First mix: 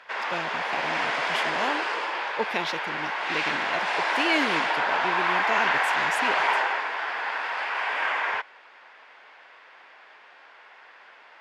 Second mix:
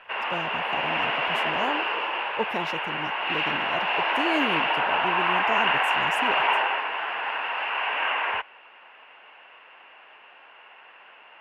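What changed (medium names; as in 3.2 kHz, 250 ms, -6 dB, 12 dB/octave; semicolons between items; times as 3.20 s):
background: add resonant low-pass 2.8 kHz, resonance Q 12; master: remove frequency weighting D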